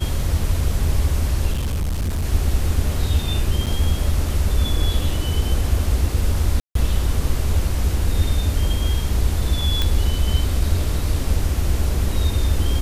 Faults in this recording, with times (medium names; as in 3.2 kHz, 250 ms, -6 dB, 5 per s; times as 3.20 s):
1.52–2.25 s: clipped -19 dBFS
3.66–3.67 s: dropout 7.6 ms
6.60–6.75 s: dropout 153 ms
9.82 s: pop